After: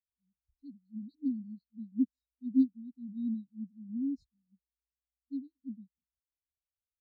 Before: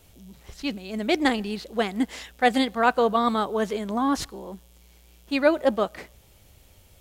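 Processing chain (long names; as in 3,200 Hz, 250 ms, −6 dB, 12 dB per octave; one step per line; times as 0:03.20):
linear-phase brick-wall band-stop 290–3,700 Hz
every bin expanded away from the loudest bin 2.5 to 1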